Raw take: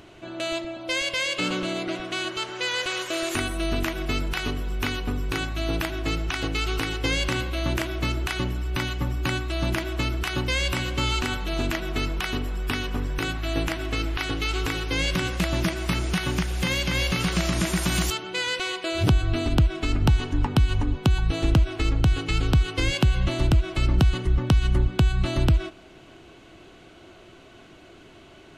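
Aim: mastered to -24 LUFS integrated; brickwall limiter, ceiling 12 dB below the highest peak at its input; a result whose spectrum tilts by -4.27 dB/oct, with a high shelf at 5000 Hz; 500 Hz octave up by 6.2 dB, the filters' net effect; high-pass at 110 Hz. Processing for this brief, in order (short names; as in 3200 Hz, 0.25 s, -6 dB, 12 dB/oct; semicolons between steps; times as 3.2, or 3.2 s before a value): HPF 110 Hz; bell 500 Hz +9 dB; high shelf 5000 Hz -9 dB; gain +4.5 dB; limiter -13.5 dBFS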